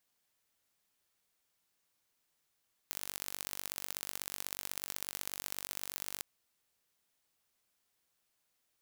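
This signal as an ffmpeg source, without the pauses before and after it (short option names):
-f lavfi -i "aevalsrc='0.316*eq(mod(n,915),0)*(0.5+0.5*eq(mod(n,2745),0))':d=3.31:s=44100"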